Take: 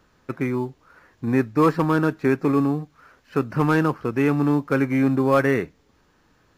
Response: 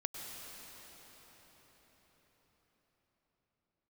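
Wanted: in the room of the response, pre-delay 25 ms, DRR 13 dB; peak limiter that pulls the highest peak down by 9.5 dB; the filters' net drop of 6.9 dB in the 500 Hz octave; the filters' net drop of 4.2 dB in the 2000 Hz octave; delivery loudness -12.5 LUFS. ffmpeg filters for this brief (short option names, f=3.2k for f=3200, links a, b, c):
-filter_complex "[0:a]equalizer=f=500:t=o:g=-8.5,equalizer=f=2k:t=o:g=-5,alimiter=limit=-20.5dB:level=0:latency=1,asplit=2[a][b];[1:a]atrim=start_sample=2205,adelay=25[c];[b][c]afir=irnorm=-1:irlink=0,volume=-13.5dB[d];[a][d]amix=inputs=2:normalize=0,volume=18dB"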